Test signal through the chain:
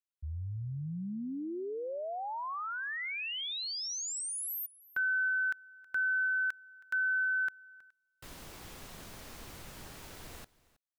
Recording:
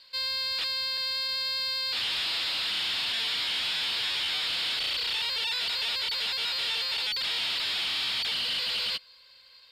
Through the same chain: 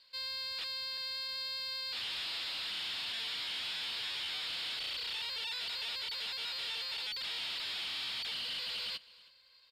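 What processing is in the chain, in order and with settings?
echo 0.32 s -21.5 dB; gain -9 dB

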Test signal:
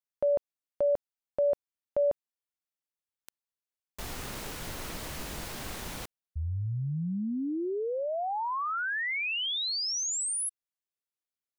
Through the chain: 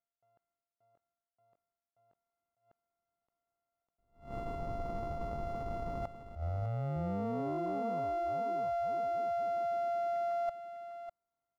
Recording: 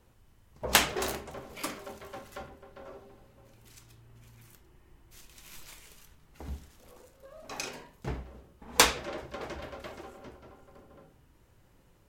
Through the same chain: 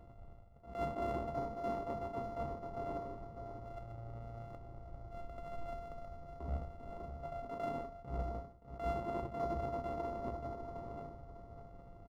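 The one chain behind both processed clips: sample sorter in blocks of 64 samples; polynomial smoothing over 65 samples; reverse; compressor 4:1, threshold -45 dBFS; reverse; echo 0.601 s -10 dB; attack slew limiter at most 150 dB/s; gain +8.5 dB

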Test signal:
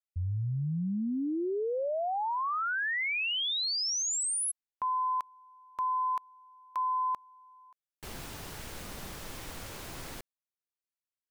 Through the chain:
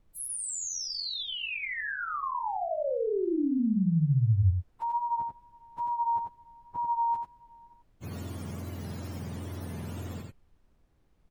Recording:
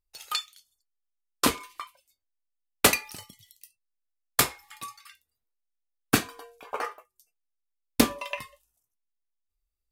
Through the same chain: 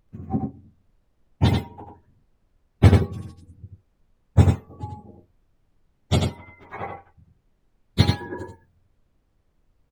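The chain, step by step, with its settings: spectrum mirrored in octaves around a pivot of 980 Hz; added noise brown -65 dBFS; wow and flutter 21 cents; echo 89 ms -4 dB

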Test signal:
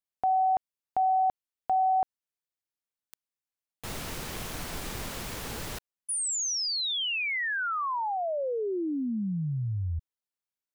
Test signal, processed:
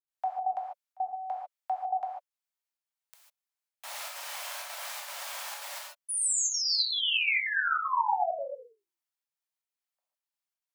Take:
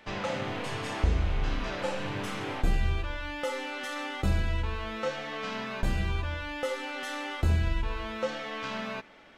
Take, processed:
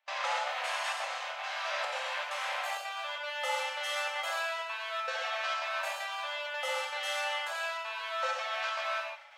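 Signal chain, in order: steep high-pass 560 Hz 96 dB/oct; step gate ".xxxx.xxxxxx" 195 bpm -24 dB; non-linear reverb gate 0.17 s flat, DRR -2 dB; upward expander 1.5:1, over -29 dBFS

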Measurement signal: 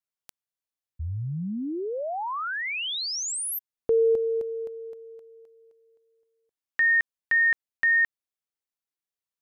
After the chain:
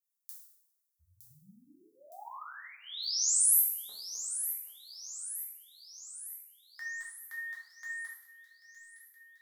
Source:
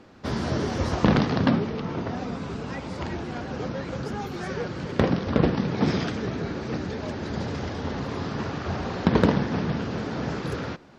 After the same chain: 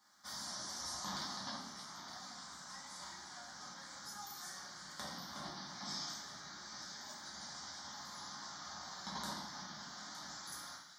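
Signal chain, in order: differentiator; fixed phaser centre 1100 Hz, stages 4; on a send: thin delay 0.914 s, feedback 57%, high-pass 2900 Hz, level -10.5 dB; on the sum: two-slope reverb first 0.68 s, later 1.9 s, from -24 dB, DRR -6.5 dB; dynamic EQ 1700 Hz, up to -7 dB, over -51 dBFS, Q 1.4; gain -2.5 dB

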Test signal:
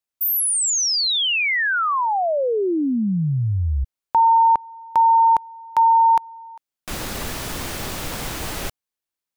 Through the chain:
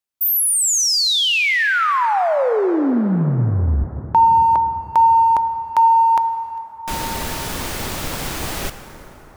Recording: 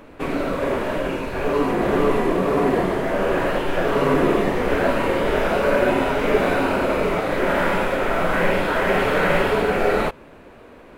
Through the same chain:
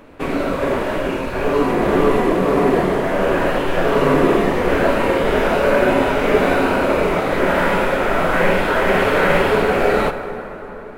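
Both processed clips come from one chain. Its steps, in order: in parallel at -7 dB: crossover distortion -38 dBFS; on the sum: plate-style reverb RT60 4.7 s, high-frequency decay 0.45×, DRR 9 dB

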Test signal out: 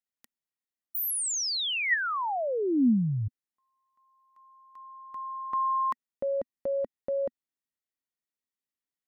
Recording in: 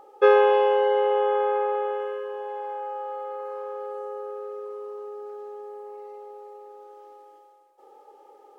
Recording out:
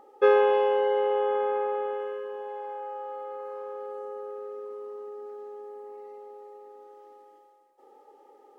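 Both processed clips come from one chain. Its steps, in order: small resonant body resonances 240/1900 Hz, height 10 dB, ringing for 30 ms; gain -4.5 dB

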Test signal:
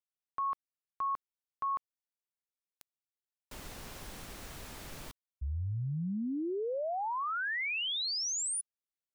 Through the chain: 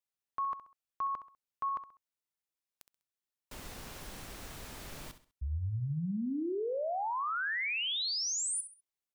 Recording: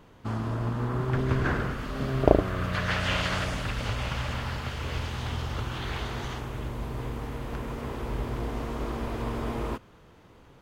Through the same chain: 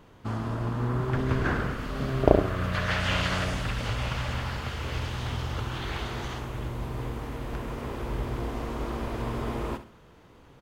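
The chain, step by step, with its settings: feedback echo 66 ms, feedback 33%, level -12 dB

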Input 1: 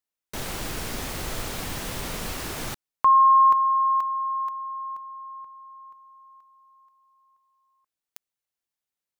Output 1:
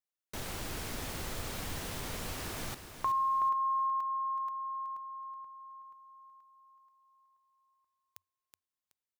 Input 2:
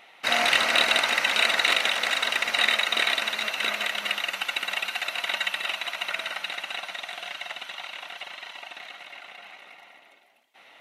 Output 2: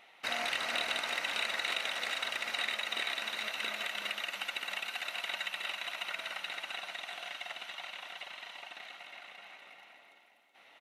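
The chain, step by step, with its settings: compressor 2:1, threshold -28 dBFS; bell 90 Hz +6 dB 0.22 oct; feedback echo 0.374 s, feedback 27%, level -9.5 dB; gain -7 dB

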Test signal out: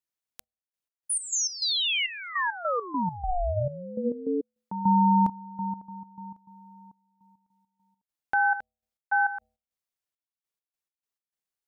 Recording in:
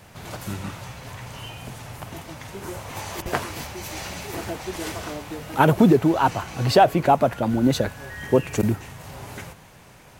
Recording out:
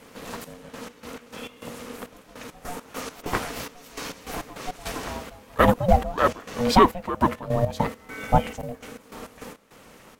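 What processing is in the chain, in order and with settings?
de-hum 136.8 Hz, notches 3; step gate "xxx..x.x.x." 102 bpm -12 dB; ring modulator 360 Hz; gain +2.5 dB

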